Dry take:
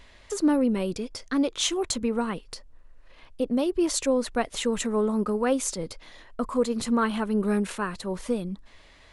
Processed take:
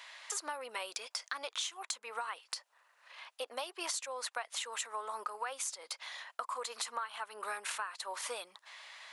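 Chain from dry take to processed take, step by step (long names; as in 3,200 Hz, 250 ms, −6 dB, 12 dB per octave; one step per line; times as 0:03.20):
high-pass filter 800 Hz 24 dB per octave
downward compressor 16 to 1, threshold −40 dBFS, peak gain reduction 19 dB
level +5 dB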